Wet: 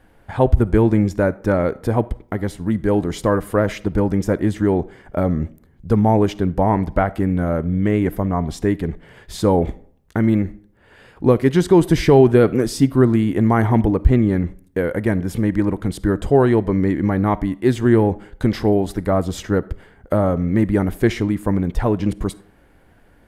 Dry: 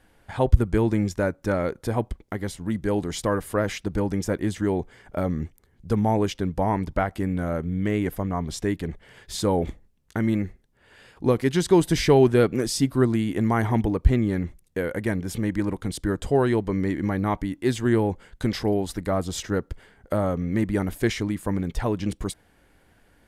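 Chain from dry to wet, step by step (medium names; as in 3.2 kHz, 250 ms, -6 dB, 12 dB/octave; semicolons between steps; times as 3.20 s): peaking EQ 6.5 kHz -9 dB 2.8 oct; algorithmic reverb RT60 0.55 s, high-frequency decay 0.65×, pre-delay 10 ms, DRR 19 dB; loudness maximiser +8 dB; trim -1 dB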